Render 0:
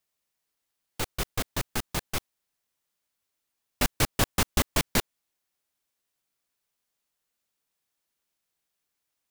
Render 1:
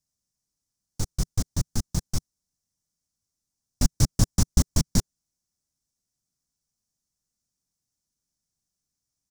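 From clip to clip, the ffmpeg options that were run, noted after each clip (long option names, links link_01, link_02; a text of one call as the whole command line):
ffmpeg -i in.wav -af "firequalizer=gain_entry='entry(160,0);entry(400,-15);entry(2700,-25);entry(5600,-3);entry(13000,-17)':delay=0.05:min_phase=1,volume=8.5dB" out.wav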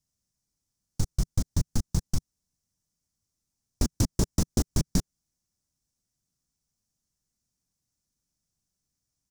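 ffmpeg -i in.wav -af "lowshelf=frequency=310:gain=5.5,aeval=exprs='0.282*(abs(mod(val(0)/0.282+3,4)-2)-1)':channel_layout=same,acompressor=threshold=-20dB:ratio=6" out.wav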